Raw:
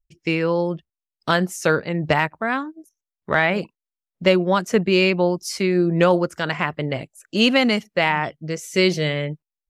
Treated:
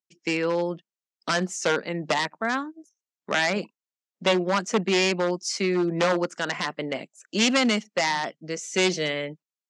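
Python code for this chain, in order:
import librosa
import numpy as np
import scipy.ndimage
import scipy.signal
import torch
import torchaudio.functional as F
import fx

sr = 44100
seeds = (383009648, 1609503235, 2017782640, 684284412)

y = np.minimum(x, 2.0 * 10.0 ** (-12.5 / 20.0) - x)
y = scipy.signal.sosfilt(scipy.signal.ellip(3, 1.0, 50, [200.0, 7100.0], 'bandpass', fs=sr, output='sos'), y)
y = fx.high_shelf(y, sr, hz=5500.0, db=8.0)
y = y * librosa.db_to_amplitude(-3.0)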